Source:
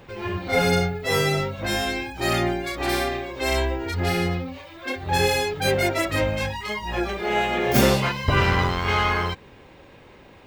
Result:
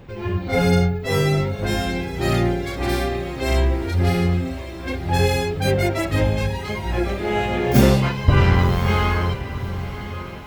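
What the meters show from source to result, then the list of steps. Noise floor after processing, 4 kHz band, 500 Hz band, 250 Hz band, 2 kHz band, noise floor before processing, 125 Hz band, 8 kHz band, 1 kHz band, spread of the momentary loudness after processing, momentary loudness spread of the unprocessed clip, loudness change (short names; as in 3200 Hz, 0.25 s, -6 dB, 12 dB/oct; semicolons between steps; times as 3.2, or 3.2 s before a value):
-32 dBFS, -2.0 dB, +1.5 dB, +5.0 dB, -2.0 dB, -49 dBFS, +7.5 dB, -2.0 dB, -0.5 dB, 11 LU, 9 LU, +2.5 dB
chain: low shelf 340 Hz +11 dB; on a send: diffused feedback echo 1.089 s, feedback 41%, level -12 dB; on the sum: gain -2.5 dB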